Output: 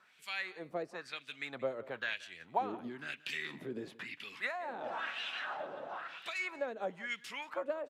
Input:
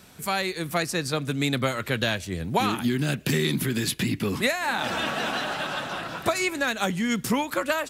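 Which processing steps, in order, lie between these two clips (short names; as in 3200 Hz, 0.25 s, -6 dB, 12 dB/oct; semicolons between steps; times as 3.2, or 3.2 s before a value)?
LFO band-pass sine 1 Hz 460–3000 Hz; echo 0.178 s -19.5 dB; gain -5 dB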